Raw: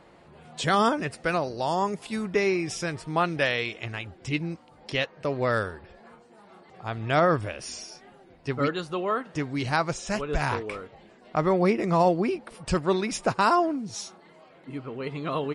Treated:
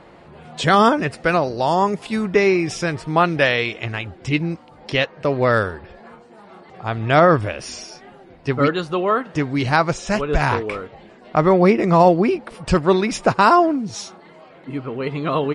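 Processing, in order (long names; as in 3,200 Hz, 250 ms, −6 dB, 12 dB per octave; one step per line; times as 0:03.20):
high-shelf EQ 7,100 Hz −10.5 dB
level +8.5 dB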